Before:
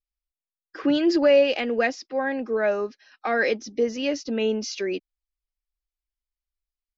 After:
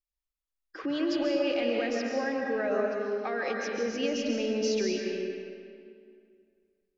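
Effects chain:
brickwall limiter −20.5 dBFS, peak gain reduction 11 dB
convolution reverb RT60 2.3 s, pre-delay 100 ms, DRR −0.5 dB
level −4 dB

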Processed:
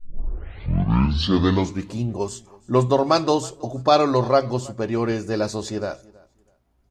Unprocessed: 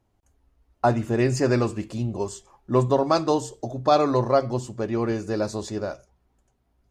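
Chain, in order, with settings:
turntable start at the beginning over 1.97 s
repeating echo 323 ms, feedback 23%, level −23.5 dB
dynamic equaliser 3,300 Hz, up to +5 dB, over −42 dBFS, Q 0.75
level +2 dB

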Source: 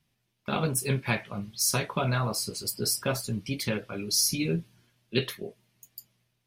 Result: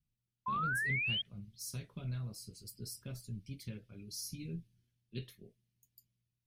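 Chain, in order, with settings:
guitar amp tone stack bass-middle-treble 10-0-1
sound drawn into the spectrogram rise, 0:00.46–0:01.22, 1,000–3,300 Hz −37 dBFS
level +2 dB

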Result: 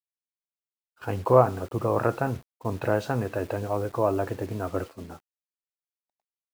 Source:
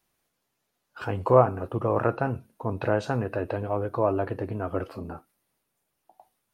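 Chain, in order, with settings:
bit-depth reduction 8 bits, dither none
downward expander −31 dBFS

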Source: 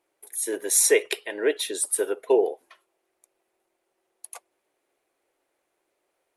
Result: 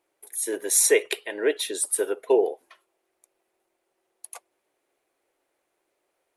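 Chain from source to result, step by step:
0:00.86–0:01.36: notch filter 5,200 Hz, Q 9.4

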